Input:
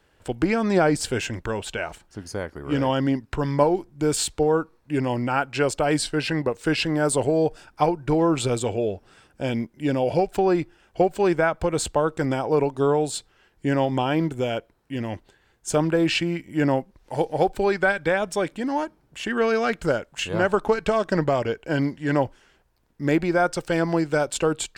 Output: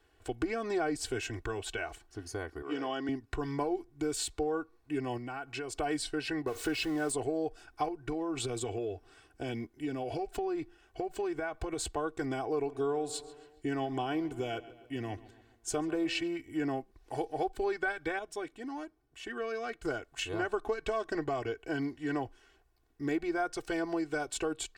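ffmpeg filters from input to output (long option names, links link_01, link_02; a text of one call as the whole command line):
ffmpeg -i in.wav -filter_complex "[0:a]asettb=1/sr,asplit=3[link_01][link_02][link_03];[link_01]atrim=end=2.624[link_04];[link_02]atrim=start=2.62:end=3.09,asetpts=PTS-STARTPTS,afade=type=in:duration=0.004:curve=qsin,afade=type=out:start_time=0.466:duration=0.004:curve=qsin,highpass=300,lowpass=7300[link_05];[link_03]atrim=start=3.086[link_06];[link_04][link_05]acrossfade=duration=0.004:curve1=hsin:curve2=qsin[link_07];[link_07][link_06]acrossfade=duration=0.004:curve1=qsin:curve2=hsin,asettb=1/sr,asplit=3[link_08][link_09][link_10];[link_08]atrim=end=5.174[link_11];[link_09]atrim=start=5.17:end=5.77,asetpts=PTS-STARTPTS,afade=type=in:duration=0.004:curve=qsin,afade=type=out:start_time=0.596:duration=0.004:curve=qsin,acompressor=threshold=-29dB:ratio=6:attack=3.2:release=140:knee=1:detection=peak[link_12];[link_10]atrim=start=5.766[link_13];[link_11][link_12]acrossfade=duration=0.004:curve1=hsin:curve2=qsin[link_14];[link_14][link_13]acrossfade=duration=0.004:curve1=qsin:curve2=hsin,asettb=1/sr,asplit=3[link_15][link_16][link_17];[link_15]atrim=end=6.474[link_18];[link_16]atrim=start=6.47:end=7.12,asetpts=PTS-STARTPTS,afade=type=in:duration=0.004:curve=qsin,afade=type=out:start_time=0.646:duration=0.004:curve=qsin,aeval=exprs='val(0)+0.5*0.0282*sgn(val(0))':channel_layout=same[link_19];[link_17]atrim=start=7.116[link_20];[link_18][link_19]acrossfade=duration=0.004:curve1=hsin:curve2=qsin[link_21];[link_21][link_20]acrossfade=duration=0.004:curve1=qsin:curve2=hsin,asettb=1/sr,asplit=3[link_22][link_23][link_24];[link_22]atrim=end=7.884[link_25];[link_23]atrim=start=7.88:end=11.97,asetpts=PTS-STARTPTS,afade=type=in:duration=0.004:curve=qsin,afade=type=out:start_time=4.086:duration=0.004:curve=qsin,acompressor=threshold=-22dB:ratio=6:attack=3.2:release=140:knee=1:detection=peak[link_26];[link_24]atrim=start=11.966[link_27];[link_25][link_26]acrossfade=duration=0.004:curve1=hsin:curve2=qsin[link_28];[link_28][link_27]acrossfade=duration=0.004:curve1=qsin:curve2=hsin,asplit=3[link_29][link_30][link_31];[link_29]afade=type=out:start_time=12.67:duration=0.02[link_32];[link_30]asplit=2[link_33][link_34];[link_34]adelay=138,lowpass=frequency=4700:poles=1,volume=-19dB,asplit=2[link_35][link_36];[link_36]adelay=138,lowpass=frequency=4700:poles=1,volume=0.52,asplit=2[link_37][link_38];[link_38]adelay=138,lowpass=frequency=4700:poles=1,volume=0.52,asplit=2[link_39][link_40];[link_40]adelay=138,lowpass=frequency=4700:poles=1,volume=0.52[link_41];[link_33][link_35][link_37][link_39][link_41]amix=inputs=5:normalize=0,afade=type=in:start_time=12.67:duration=0.02,afade=type=out:start_time=16.27:duration=0.02[link_42];[link_31]afade=type=in:start_time=16.27:duration=0.02[link_43];[link_32][link_42][link_43]amix=inputs=3:normalize=0,asplit=3[link_44][link_45][link_46];[link_44]atrim=end=18.192[link_47];[link_45]atrim=start=18.188:end=19.852,asetpts=PTS-STARTPTS,volume=-7.5dB[link_48];[link_46]atrim=start=19.848[link_49];[link_47][link_48]acrossfade=duration=0.004:curve1=hsin:curve2=hsin[link_50];[link_50][link_49]acrossfade=duration=0.004:curve1=hsin:curve2=hsin,aecho=1:1:2.7:0.86,acompressor=threshold=-26dB:ratio=2,volume=-8dB" out.wav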